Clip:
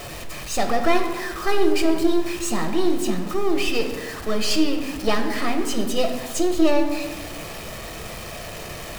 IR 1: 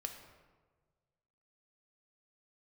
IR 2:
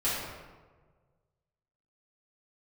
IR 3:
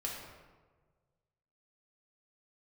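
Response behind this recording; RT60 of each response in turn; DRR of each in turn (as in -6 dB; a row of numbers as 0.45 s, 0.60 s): 1; 1.5 s, 1.4 s, 1.4 s; 4.5 dB, -11.5 dB, -3.0 dB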